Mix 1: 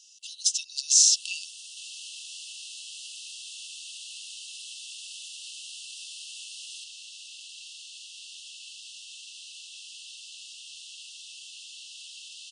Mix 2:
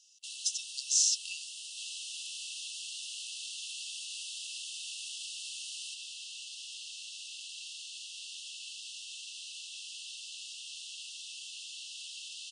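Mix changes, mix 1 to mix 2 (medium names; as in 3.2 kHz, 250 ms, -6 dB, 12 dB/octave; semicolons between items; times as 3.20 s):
speech -8.0 dB; first sound: entry -0.90 s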